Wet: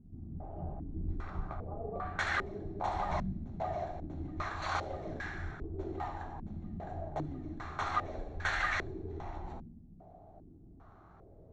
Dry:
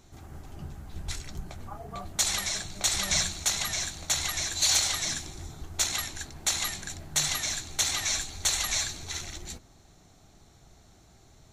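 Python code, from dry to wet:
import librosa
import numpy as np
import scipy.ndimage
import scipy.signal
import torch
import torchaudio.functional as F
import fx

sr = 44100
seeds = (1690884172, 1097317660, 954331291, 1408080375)

y = fx.rev_double_slope(x, sr, seeds[0], early_s=0.98, late_s=2.6, knee_db=-23, drr_db=2.5)
y = fx.filter_held_lowpass(y, sr, hz=2.5, low_hz=220.0, high_hz=1600.0)
y = y * librosa.db_to_amplitude(-3.0)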